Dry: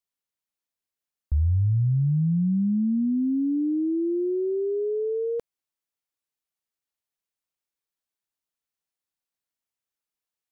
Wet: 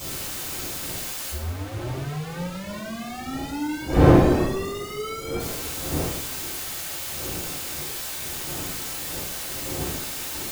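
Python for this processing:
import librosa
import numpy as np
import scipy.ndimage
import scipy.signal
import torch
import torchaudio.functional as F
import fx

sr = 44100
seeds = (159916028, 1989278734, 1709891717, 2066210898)

y = np.sign(x) * np.sqrt(np.mean(np.square(x)))
y = fx.dmg_wind(y, sr, seeds[0], corner_hz=370.0, level_db=-24.0)
y = fx.rev_double_slope(y, sr, seeds[1], early_s=0.63, late_s=2.3, knee_db=-18, drr_db=-9.5)
y = F.gain(torch.from_numpy(y), -12.5).numpy()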